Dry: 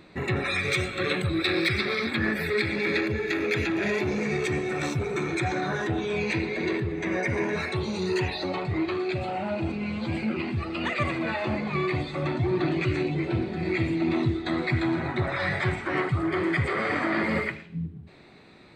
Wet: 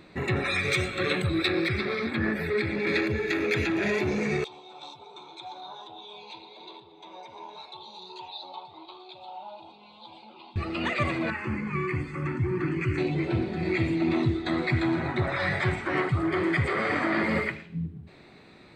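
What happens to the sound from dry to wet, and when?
0:01.48–0:02.87: high-shelf EQ 2,500 Hz −9.5 dB
0:04.44–0:10.56: pair of resonant band-passes 1,800 Hz, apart 2 octaves
0:11.30–0:12.98: phaser with its sweep stopped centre 1,600 Hz, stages 4

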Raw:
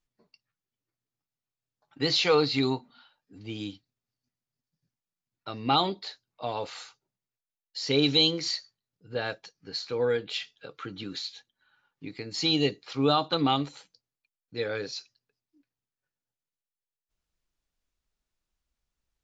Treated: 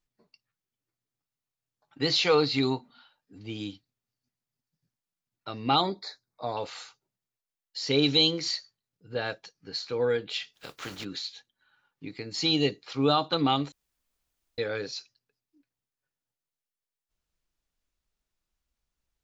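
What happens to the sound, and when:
0:05.81–0:06.57: Butterworth band-reject 2,900 Hz, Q 2.2
0:10.53–0:11.03: compressing power law on the bin magnitudes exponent 0.44
0:13.72–0:14.58: fill with room tone

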